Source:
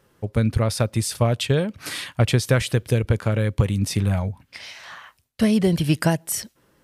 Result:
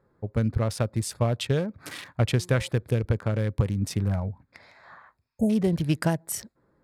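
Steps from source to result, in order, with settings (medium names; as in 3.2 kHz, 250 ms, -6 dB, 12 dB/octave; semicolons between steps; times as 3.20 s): local Wiener filter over 15 samples; 2.27–2.69 s: de-hum 178.3 Hz, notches 6; 5.24–5.47 s: spectral replace 890–6400 Hz before; trim -4.5 dB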